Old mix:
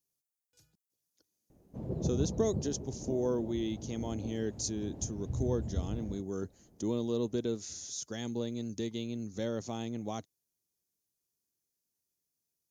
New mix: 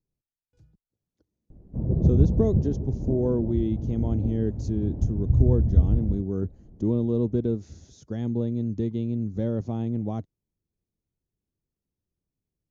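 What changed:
speech: add treble shelf 5.7 kHz -8 dB; master: add tilt EQ -4.5 dB/octave

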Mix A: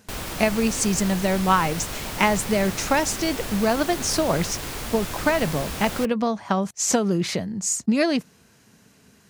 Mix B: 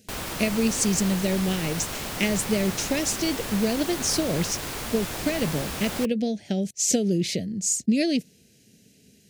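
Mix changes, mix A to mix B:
speech: add Butterworth band-stop 1.1 kHz, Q 0.58; master: add bass shelf 67 Hz -7 dB

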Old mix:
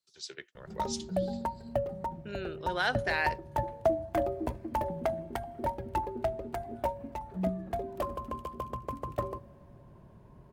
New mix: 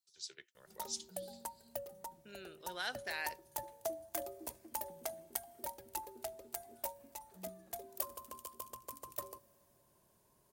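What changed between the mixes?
background: add tone controls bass -11 dB, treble +12 dB; master: add pre-emphasis filter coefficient 0.8

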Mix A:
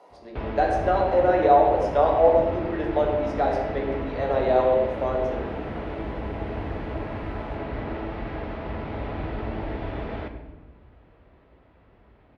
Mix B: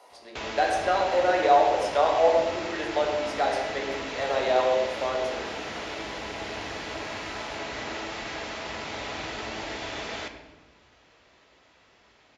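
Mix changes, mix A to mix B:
background: remove Gaussian low-pass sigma 2.5 samples; master: add tilt EQ +4 dB/octave

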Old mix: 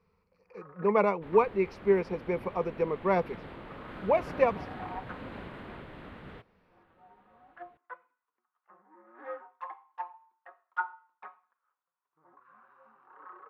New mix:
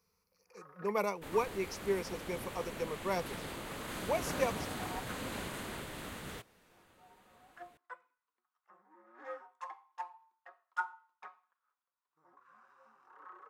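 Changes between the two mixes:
speech -10.0 dB; first sound -6.0 dB; master: remove distance through air 440 m

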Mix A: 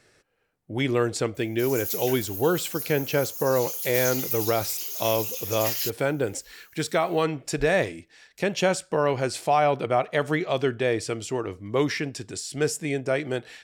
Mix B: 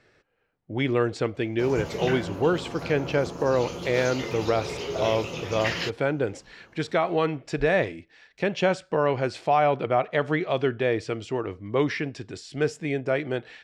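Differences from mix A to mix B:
background: remove differentiator; master: add low-pass 3.6 kHz 12 dB/octave

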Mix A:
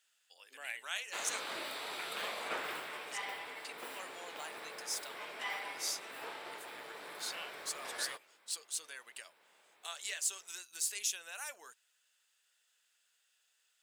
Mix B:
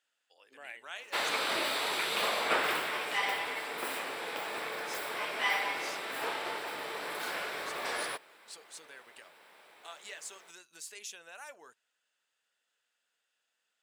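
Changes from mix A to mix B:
speech: add tilt EQ -3.5 dB/octave; background +10.0 dB

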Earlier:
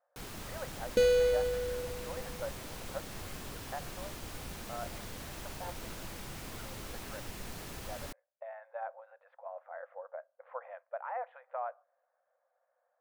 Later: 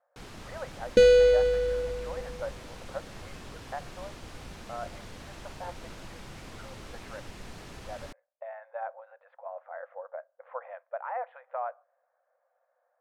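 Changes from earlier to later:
speech +4.0 dB; second sound +8.0 dB; master: add distance through air 55 m

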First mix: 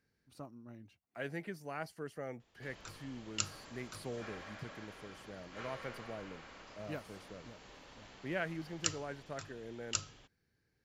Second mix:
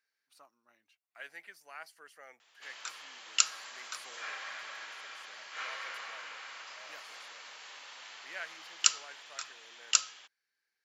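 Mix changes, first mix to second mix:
background +10.5 dB; master: add high-pass 1.2 kHz 12 dB/octave

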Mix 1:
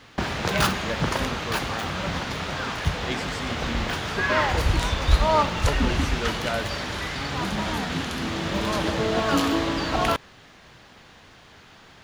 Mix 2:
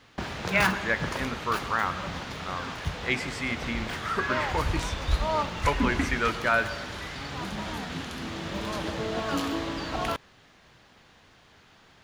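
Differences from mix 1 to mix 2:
speech: add high-order bell 1.5 kHz +9.5 dB; background -7.0 dB

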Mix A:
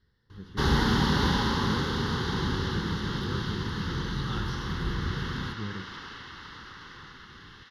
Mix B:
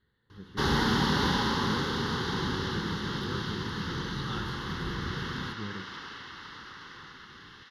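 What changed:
speech: add Butterworth band-stop 5.5 kHz, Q 2; master: add bass shelf 94 Hz -11 dB

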